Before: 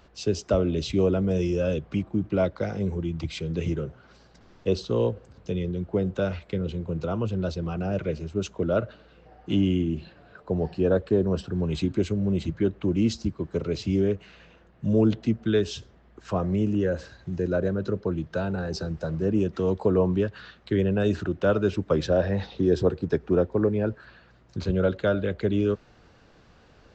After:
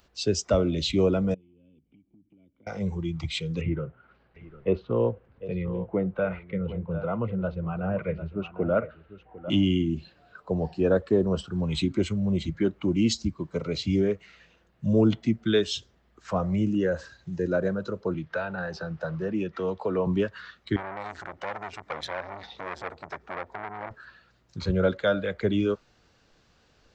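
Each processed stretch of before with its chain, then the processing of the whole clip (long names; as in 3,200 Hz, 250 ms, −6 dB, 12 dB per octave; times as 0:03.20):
0:01.34–0:02.67: formant resonators in series i + downward compressor 4 to 1, threshold −49 dBFS + high-frequency loss of the air 160 metres
0:03.61–0:09.50: low-pass filter 2,500 Hz 24 dB per octave + single-tap delay 751 ms −11 dB
0:18.14–0:20.07: low-pass filter 3,100 Hz + tilt shelving filter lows −4.5 dB, about 1,200 Hz + multiband upward and downward compressor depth 40%
0:20.76–0:23.91: downward compressor 2.5 to 1, threshold −27 dBFS + saturating transformer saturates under 1,400 Hz
whole clip: noise reduction from a noise print of the clip's start 9 dB; high-shelf EQ 2,900 Hz +11 dB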